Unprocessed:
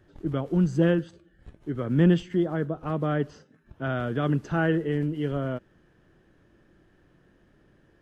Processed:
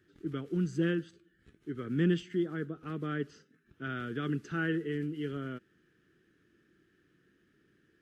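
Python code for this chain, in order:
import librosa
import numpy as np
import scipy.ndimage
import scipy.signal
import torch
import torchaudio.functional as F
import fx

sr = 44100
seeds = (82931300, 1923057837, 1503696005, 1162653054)

y = fx.highpass(x, sr, hz=260.0, slope=6)
y = fx.band_shelf(y, sr, hz=750.0, db=-15.5, octaves=1.2)
y = y * 10.0 ** (-4.0 / 20.0)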